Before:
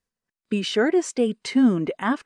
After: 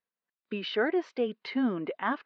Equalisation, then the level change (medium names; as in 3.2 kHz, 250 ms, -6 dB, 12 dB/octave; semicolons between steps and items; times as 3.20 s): high-pass 820 Hz 6 dB/octave; steep low-pass 4.4 kHz 36 dB/octave; treble shelf 2.3 kHz -10 dB; 0.0 dB